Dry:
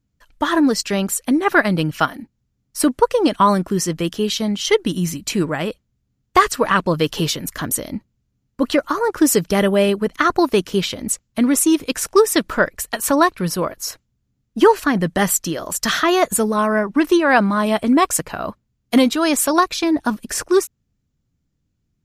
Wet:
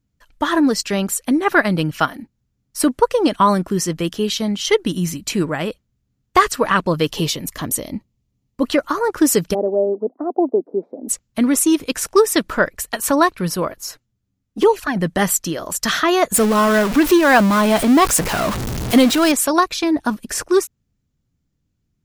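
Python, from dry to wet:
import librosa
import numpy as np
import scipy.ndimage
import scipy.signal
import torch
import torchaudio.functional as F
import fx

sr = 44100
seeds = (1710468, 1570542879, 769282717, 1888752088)

y = fx.peak_eq(x, sr, hz=1500.0, db=-10.0, octaves=0.3, at=(7.11, 8.67))
y = fx.ellip_bandpass(y, sr, low_hz=250.0, high_hz=760.0, order=3, stop_db=60, at=(9.53, 11.08), fade=0.02)
y = fx.env_flanger(y, sr, rest_ms=11.3, full_db=-8.0, at=(13.79, 14.95), fade=0.02)
y = fx.zero_step(y, sr, step_db=-17.5, at=(16.34, 19.32))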